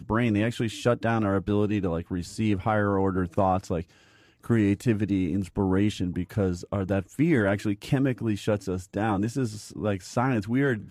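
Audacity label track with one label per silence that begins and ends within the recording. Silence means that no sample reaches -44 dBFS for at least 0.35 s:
3.830000	4.440000	silence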